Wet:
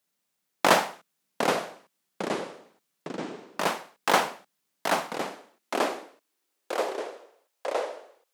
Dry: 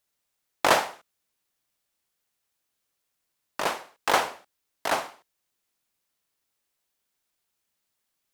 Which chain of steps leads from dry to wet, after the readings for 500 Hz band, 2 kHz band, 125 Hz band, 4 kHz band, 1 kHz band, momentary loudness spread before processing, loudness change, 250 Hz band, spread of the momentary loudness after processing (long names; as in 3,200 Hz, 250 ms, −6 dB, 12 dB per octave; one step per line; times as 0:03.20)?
+4.0 dB, +1.0 dB, +6.5 dB, +1.0 dB, +1.5 dB, 14 LU, −2.0 dB, +7.5 dB, 16 LU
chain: delay with pitch and tempo change per echo 590 ms, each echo −4 semitones, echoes 3, each echo −6 dB
high-pass filter sweep 180 Hz → 530 Hz, 0:05.03–0:07.55